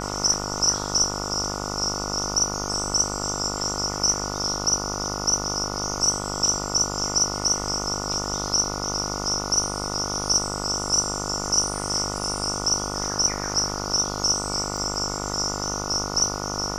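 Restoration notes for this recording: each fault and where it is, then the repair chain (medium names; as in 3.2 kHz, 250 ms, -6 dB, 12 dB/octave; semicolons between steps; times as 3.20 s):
buzz 50 Hz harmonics 29 -31 dBFS
14.77–14.78 s: dropout 5.3 ms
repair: de-hum 50 Hz, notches 29; interpolate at 14.77 s, 5.3 ms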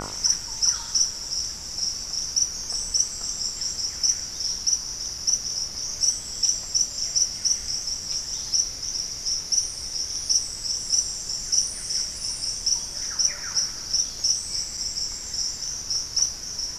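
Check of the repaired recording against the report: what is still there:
nothing left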